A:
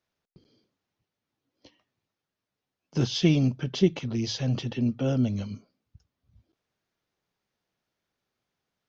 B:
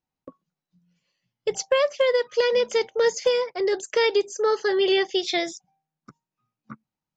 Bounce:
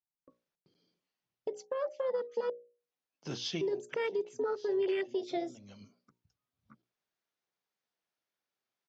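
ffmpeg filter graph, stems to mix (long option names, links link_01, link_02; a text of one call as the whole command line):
ffmpeg -i stem1.wav -i stem2.wav -filter_complex "[0:a]highpass=frequency=430:poles=1,adelay=300,volume=-7dB[link_01];[1:a]afwtdn=0.0562,acompressor=threshold=-24dB:ratio=3,volume=-2.5dB,asplit=3[link_02][link_03][link_04];[link_02]atrim=end=2.5,asetpts=PTS-STARTPTS,afade=type=out:start_time=2.496:duration=0.004:curve=hsin[link_05];[link_03]atrim=start=2.5:end=3.61,asetpts=PTS-STARTPTS,volume=0[link_06];[link_04]atrim=start=3.61,asetpts=PTS-STARTPTS,afade=type=in:duration=0.004:curve=hsin[link_07];[link_05][link_06][link_07]concat=n=3:v=0:a=1,asplit=2[link_08][link_09];[link_09]apad=whole_len=405182[link_10];[link_01][link_10]sidechaincompress=threshold=-44dB:ratio=12:attack=29:release=368[link_11];[link_11][link_08]amix=inputs=2:normalize=0,bandreject=frequency=60:width_type=h:width=6,bandreject=frequency=120:width_type=h:width=6,bandreject=frequency=180:width_type=h:width=6,bandreject=frequency=240:width_type=h:width=6,bandreject=frequency=300:width_type=h:width=6,bandreject=frequency=360:width_type=h:width=6,bandreject=frequency=420:width_type=h:width=6,bandreject=frequency=480:width_type=h:width=6,bandreject=frequency=540:width_type=h:width=6,bandreject=frequency=600:width_type=h:width=6,alimiter=level_in=0.5dB:limit=-24dB:level=0:latency=1:release=428,volume=-0.5dB" out.wav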